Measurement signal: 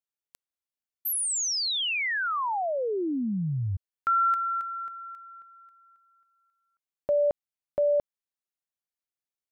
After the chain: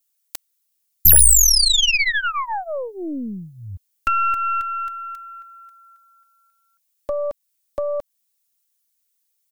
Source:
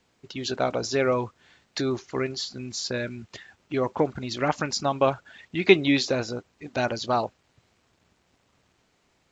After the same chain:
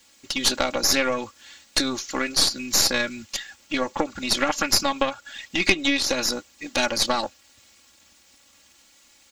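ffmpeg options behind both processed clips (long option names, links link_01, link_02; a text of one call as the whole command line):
ffmpeg -i in.wav -filter_complex "[0:a]acrossover=split=2700[link_01][link_02];[link_02]acompressor=threshold=-33dB:ratio=4:attack=1:release=60[link_03];[link_01][link_03]amix=inputs=2:normalize=0,aecho=1:1:3.6:0.83,acompressor=threshold=-23dB:ratio=6:attack=31:release=238:knee=6:detection=rms,crystalizer=i=8.5:c=0,aeval=exprs='0.794*(cos(1*acos(clip(val(0)/0.794,-1,1)))-cos(1*PI/2))+0.224*(cos(4*acos(clip(val(0)/0.794,-1,1)))-cos(4*PI/2))':channel_layout=same,volume=-1.5dB" out.wav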